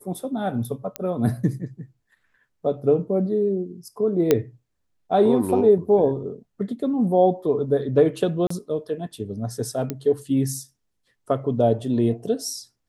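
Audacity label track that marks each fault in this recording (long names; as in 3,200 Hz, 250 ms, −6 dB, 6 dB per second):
0.960000	0.960000	click −11 dBFS
4.310000	4.310000	click −4 dBFS
8.470000	8.500000	drop-out 34 ms
9.900000	9.900000	click −13 dBFS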